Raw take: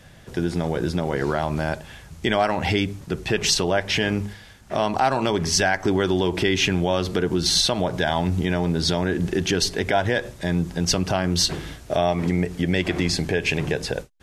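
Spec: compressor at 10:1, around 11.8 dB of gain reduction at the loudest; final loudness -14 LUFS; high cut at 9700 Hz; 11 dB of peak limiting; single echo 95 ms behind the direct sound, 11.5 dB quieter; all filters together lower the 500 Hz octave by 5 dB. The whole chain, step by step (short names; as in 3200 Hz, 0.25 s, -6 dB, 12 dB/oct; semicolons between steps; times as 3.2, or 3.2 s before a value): LPF 9700 Hz; bell 500 Hz -7 dB; compressor 10:1, threshold -30 dBFS; limiter -29 dBFS; echo 95 ms -11.5 dB; gain +25 dB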